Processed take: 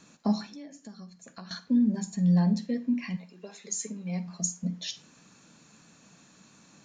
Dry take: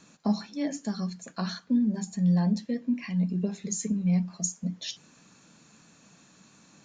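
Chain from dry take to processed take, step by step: 0.46–1.51 s: compression 5:1, threshold -44 dBFS, peak gain reduction 16.5 dB; 3.15–4.27 s: high-pass 1 kHz -> 250 Hz 12 dB/octave; reverberation RT60 0.30 s, pre-delay 41 ms, DRR 16 dB

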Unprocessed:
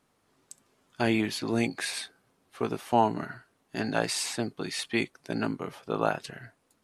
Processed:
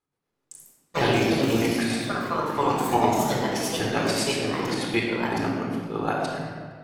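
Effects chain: square tremolo 7.9 Hz, depth 65%, duty 45%; gate -58 dBFS, range -18 dB; simulated room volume 2900 m³, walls mixed, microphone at 4 m; ever faster or slower copies 118 ms, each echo +3 st, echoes 3

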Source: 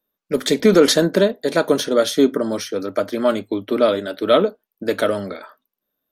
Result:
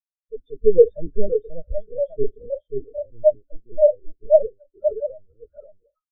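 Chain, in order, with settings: on a send: delay 533 ms -3 dB; on the sum: power-law waveshaper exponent 0.5; de-hum 97.46 Hz, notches 26; LPC vocoder at 8 kHz pitch kept; spectral contrast expander 4:1; trim -5.5 dB

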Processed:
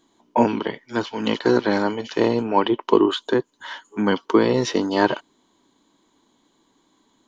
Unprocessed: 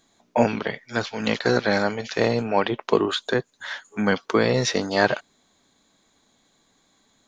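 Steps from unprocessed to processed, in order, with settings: small resonant body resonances 320/950/3000 Hz, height 13 dB, ringing for 20 ms; trim -4.5 dB

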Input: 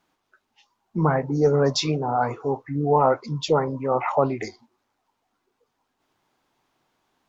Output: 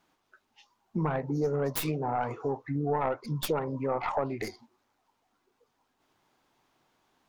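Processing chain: tracing distortion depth 0.3 ms; compression 3:1, threshold -29 dBFS, peak gain reduction 11.5 dB

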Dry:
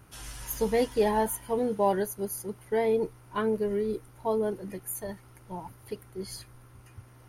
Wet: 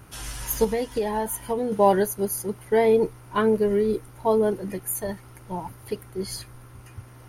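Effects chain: 0.64–1.72 s: compression 6:1, threshold -30 dBFS, peak gain reduction 10.5 dB; trim +7 dB

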